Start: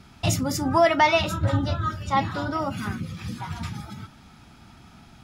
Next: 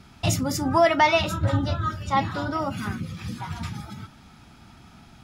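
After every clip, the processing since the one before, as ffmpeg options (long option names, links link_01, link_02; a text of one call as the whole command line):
ffmpeg -i in.wav -af anull out.wav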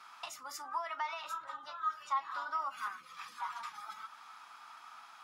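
ffmpeg -i in.wav -af "alimiter=limit=-19dB:level=0:latency=1:release=441,acompressor=threshold=-38dB:ratio=2.5,highpass=frequency=1100:width_type=q:width=4.9,volume=-4.5dB" out.wav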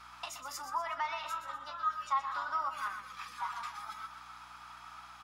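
ffmpeg -i in.wav -filter_complex "[0:a]aeval=exprs='val(0)+0.000447*(sin(2*PI*60*n/s)+sin(2*PI*2*60*n/s)/2+sin(2*PI*3*60*n/s)/3+sin(2*PI*4*60*n/s)/4+sin(2*PI*5*60*n/s)/5)':channel_layout=same,asplit=2[link_01][link_02];[link_02]aecho=0:1:123|246|369|492:0.316|0.133|0.0558|0.0234[link_03];[link_01][link_03]amix=inputs=2:normalize=0,volume=2dB" out.wav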